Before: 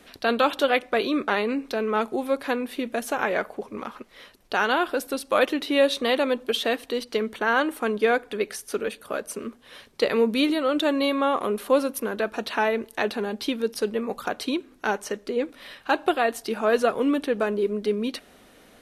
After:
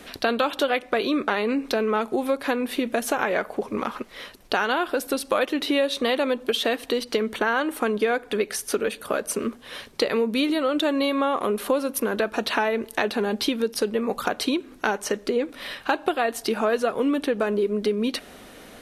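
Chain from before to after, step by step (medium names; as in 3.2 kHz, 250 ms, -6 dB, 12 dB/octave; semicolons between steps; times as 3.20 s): compression 4:1, threshold -29 dBFS, peak gain reduction 12.5 dB; trim +8 dB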